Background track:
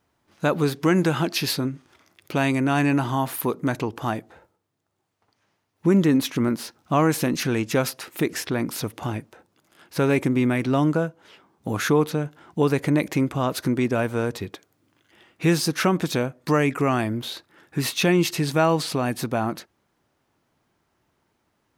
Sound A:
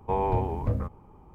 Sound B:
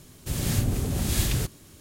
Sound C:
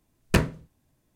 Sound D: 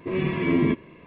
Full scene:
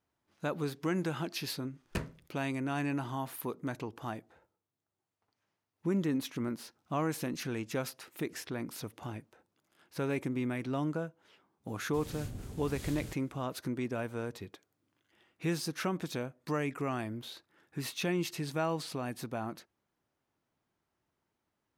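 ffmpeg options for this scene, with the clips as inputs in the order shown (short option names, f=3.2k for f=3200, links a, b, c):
-filter_complex "[0:a]volume=-13dB[a];[2:a]highshelf=f=9.6k:g=-6[b];[3:a]atrim=end=1.15,asetpts=PTS-STARTPTS,volume=-15dB,afade=t=in:d=0.004:c=hsin,afade=t=out:st=1.146:d=0.004:c=hsin,adelay=1610[c];[b]atrim=end=1.8,asetpts=PTS-STARTPTS,volume=-17dB,afade=t=in:d=0.004:c=hsin,afade=t=out:st=1.796:d=0.004:c=hsin,adelay=11670[d];[a][c][d]amix=inputs=3:normalize=0"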